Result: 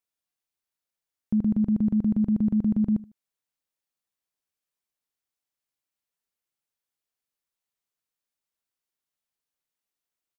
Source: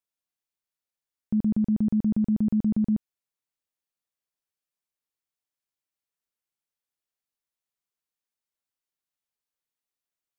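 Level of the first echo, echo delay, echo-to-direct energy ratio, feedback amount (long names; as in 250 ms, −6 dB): −19.5 dB, 76 ms, −19.0 dB, 26%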